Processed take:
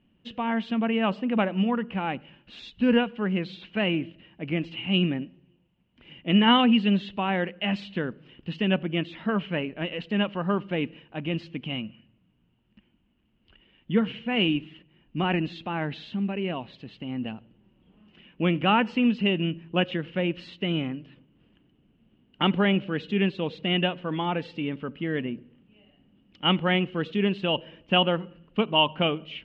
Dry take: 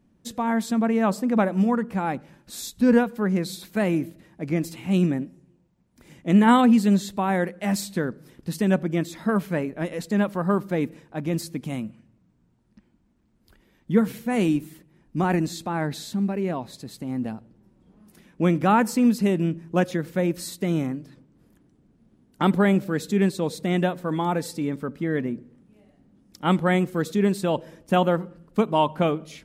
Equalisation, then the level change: synth low-pass 2900 Hz, resonance Q 14; air absorption 140 m; -3.5 dB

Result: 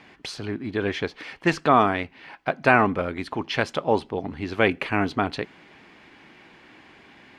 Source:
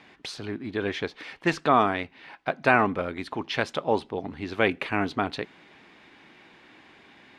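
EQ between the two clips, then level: low shelf 120 Hz +4.5 dB; notch 3700 Hz, Q 15; +2.5 dB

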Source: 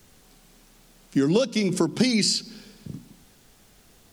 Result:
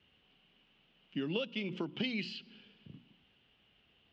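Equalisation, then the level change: HPF 52 Hz; ladder low-pass 3100 Hz, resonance 80%; air absorption 57 m; -3.0 dB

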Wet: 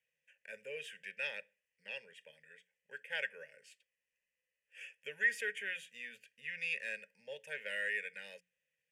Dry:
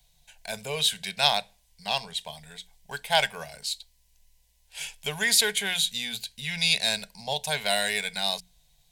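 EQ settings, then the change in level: vowel filter e; HPF 240 Hz 6 dB/oct; fixed phaser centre 1700 Hz, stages 4; +4.0 dB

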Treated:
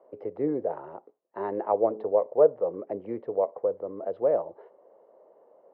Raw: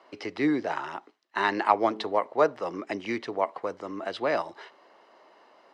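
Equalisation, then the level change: synth low-pass 500 Hz, resonance Q 3.9; bell 300 Hz -9 dB 1.2 oct; 0.0 dB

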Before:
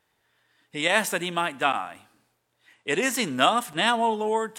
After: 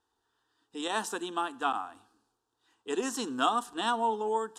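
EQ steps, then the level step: LPF 7800 Hz 12 dB/oct; bell 540 Hz +4 dB 0.34 oct; fixed phaser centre 580 Hz, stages 6; -3.5 dB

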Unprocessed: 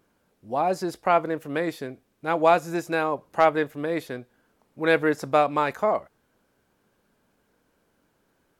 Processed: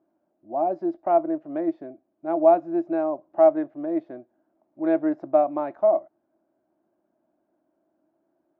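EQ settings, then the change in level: double band-pass 460 Hz, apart 0.93 oct; air absorption 170 m; +6.5 dB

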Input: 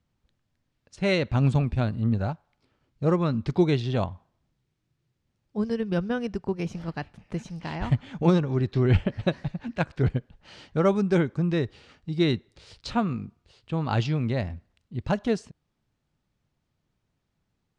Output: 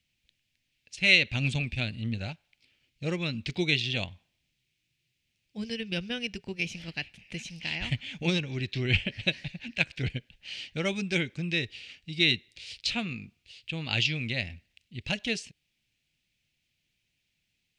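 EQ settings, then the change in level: resonant high shelf 1700 Hz +13.5 dB, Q 3; notch 410 Hz, Q 13; -8.0 dB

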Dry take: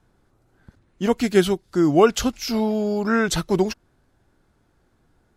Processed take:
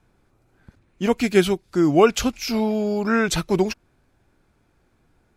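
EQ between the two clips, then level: bell 2400 Hz +8.5 dB 0.21 oct; 0.0 dB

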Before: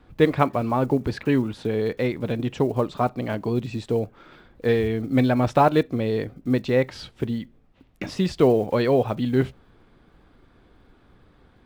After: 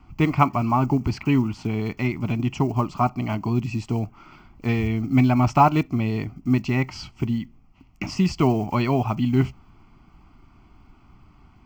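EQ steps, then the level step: fixed phaser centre 2500 Hz, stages 8; +5.0 dB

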